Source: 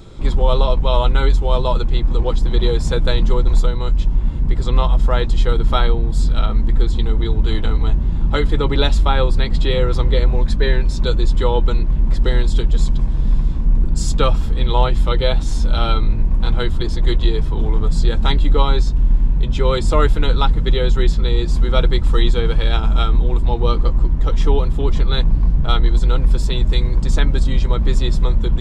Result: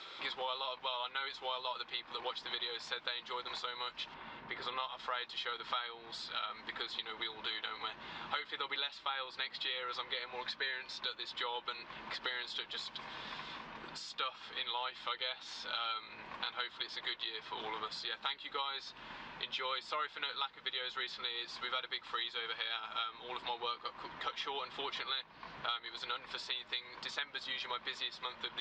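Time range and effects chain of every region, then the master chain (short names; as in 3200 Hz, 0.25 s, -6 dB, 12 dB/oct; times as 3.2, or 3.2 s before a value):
4.14–4.8 LPF 1700 Hz 6 dB/oct + doubler 36 ms -13 dB
whole clip: HPF 1400 Hz 12 dB/oct; compressor 5:1, threshold -42 dBFS; LPF 4400 Hz 24 dB/oct; gain +5 dB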